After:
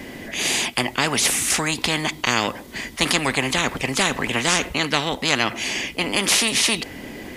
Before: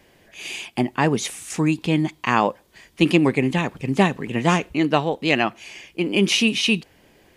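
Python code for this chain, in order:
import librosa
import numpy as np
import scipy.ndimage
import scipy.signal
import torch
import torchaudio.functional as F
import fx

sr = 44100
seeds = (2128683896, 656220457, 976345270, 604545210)

y = fx.small_body(x, sr, hz=(250.0, 2000.0), ring_ms=45, db=12)
y = fx.spectral_comp(y, sr, ratio=4.0)
y = y * librosa.db_to_amplitude(-1.0)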